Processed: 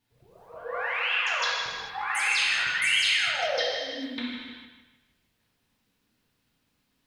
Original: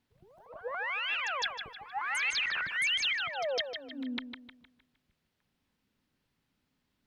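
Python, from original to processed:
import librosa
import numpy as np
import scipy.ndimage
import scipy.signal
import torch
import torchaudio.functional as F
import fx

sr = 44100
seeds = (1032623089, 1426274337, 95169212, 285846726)

y = fx.high_shelf(x, sr, hz=4300.0, db=5.0)
y = fx.rev_gated(y, sr, seeds[0], gate_ms=480, shape='falling', drr_db=-7.0)
y = y * 10.0 ** (-2.5 / 20.0)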